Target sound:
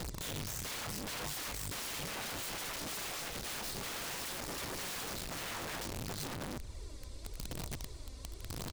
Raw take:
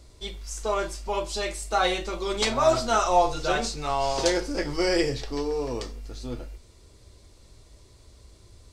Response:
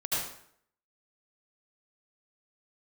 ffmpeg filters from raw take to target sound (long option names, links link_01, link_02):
-filter_complex "[0:a]acrossover=split=5600[link_01][link_02];[link_02]acompressor=threshold=-44dB:ratio=4:attack=1:release=60[link_03];[link_01][link_03]amix=inputs=2:normalize=0,lowshelf=frequency=77:gain=5,acompressor=threshold=-43dB:ratio=2.5,asettb=1/sr,asplit=3[link_04][link_05][link_06];[link_04]atrim=end=3.004[link_07];[link_05]atrim=start=3:end=5.42,asetpts=PTS-STARTPTS,afade=type=in:duration=0.004:curve=qsin,afade=type=out:start_time=2.416:duration=0.004:curve=qsin,acrusher=bits=8:dc=4:mix=0:aa=0.000001[link_08];[link_06]atrim=start=5.416[link_09];[link_07][link_08]acrossfade=duration=0.004:curve1=hsin:curve2=qsin[link_10];[link_10][link_09]acrossfade=duration=0.004:curve1=qsin:curve2=hsin,aphaser=in_gain=1:out_gain=1:delay=3.9:decay=0.53:speed=0.92:type=sinusoidal,aeval=exprs='(mod(79.4*val(0)+1,2)-1)/79.4':channel_layout=same,asplit=2[link_11][link_12];[link_12]adelay=227.4,volume=-22dB,highshelf=frequency=4000:gain=-5.12[link_13];[link_11][link_13]amix=inputs=2:normalize=0,volume=2dB"